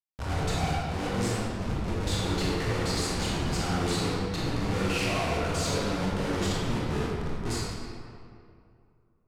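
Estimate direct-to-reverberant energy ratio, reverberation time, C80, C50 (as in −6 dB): −6.5 dB, 2.4 s, −1.0 dB, −3.5 dB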